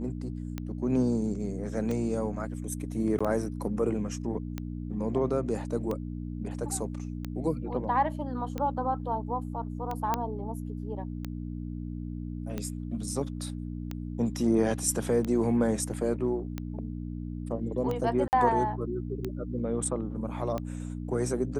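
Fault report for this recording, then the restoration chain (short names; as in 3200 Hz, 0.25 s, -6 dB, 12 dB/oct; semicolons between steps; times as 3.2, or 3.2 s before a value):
hum 60 Hz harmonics 5 -36 dBFS
tick 45 rpm -20 dBFS
3.19–3.21 gap 15 ms
10.14 pop -13 dBFS
18.28–18.33 gap 49 ms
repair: de-click; de-hum 60 Hz, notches 5; interpolate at 3.19, 15 ms; interpolate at 18.28, 49 ms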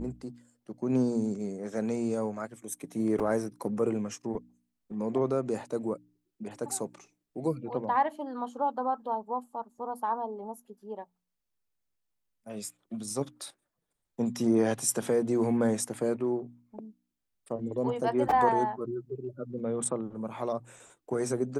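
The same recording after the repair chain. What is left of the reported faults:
none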